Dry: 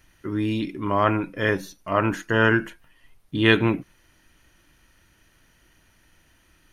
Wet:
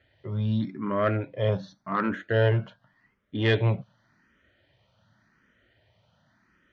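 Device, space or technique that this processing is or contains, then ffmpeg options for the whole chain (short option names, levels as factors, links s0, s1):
barber-pole phaser into a guitar amplifier: -filter_complex "[0:a]asettb=1/sr,asplit=3[s0][s1][s2];[s0]atrim=end=0.804[s3];[s1]atrim=start=0.8:end=1.52,asetpts=PTS-STARTPTS,afade=t=in:d=0.004:c=qsin,afade=t=out:st=0.716:d=0.004:c=qsin,lowpass=4500[s4];[s2]atrim=start=1.516[s5];[s3][s4]acrossfade=d=0.004:c1=hsin:c2=qsin[s6];[s6][s5]acrossfade=d=0.004:c1=qsin:c2=hsin,asplit=2[s7][s8];[s8]afreqshift=0.88[s9];[s7][s9]amix=inputs=2:normalize=1,asoftclip=type=tanh:threshold=0.211,highpass=100,equalizer=f=110:t=q:w=4:g=8,equalizer=f=210:t=q:w=4:g=4,equalizer=f=320:t=q:w=4:g=-8,equalizer=f=600:t=q:w=4:g=7,equalizer=f=1000:t=q:w=4:g=-3,equalizer=f=2600:t=q:w=4:g=-9,lowpass=f=4000:w=0.5412,lowpass=f=4000:w=1.3066"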